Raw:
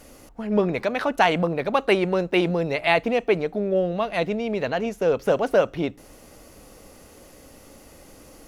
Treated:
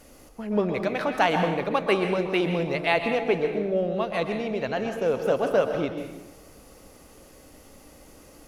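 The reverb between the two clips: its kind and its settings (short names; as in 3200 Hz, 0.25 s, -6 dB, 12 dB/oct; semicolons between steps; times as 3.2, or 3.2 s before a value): plate-style reverb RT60 1 s, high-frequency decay 0.75×, pre-delay 0.11 s, DRR 5 dB; gain -3.5 dB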